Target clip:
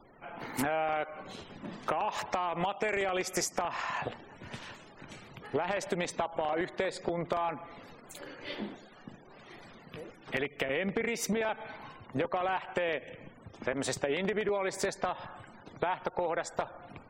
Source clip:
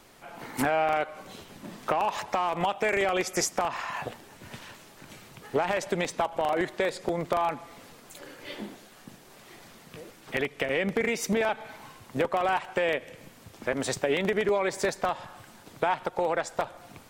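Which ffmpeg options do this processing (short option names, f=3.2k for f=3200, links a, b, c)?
-af "acompressor=threshold=-29dB:ratio=3,afftfilt=real='re*gte(hypot(re,im),0.00282)':imag='im*gte(hypot(re,im),0.00282)':win_size=1024:overlap=0.75"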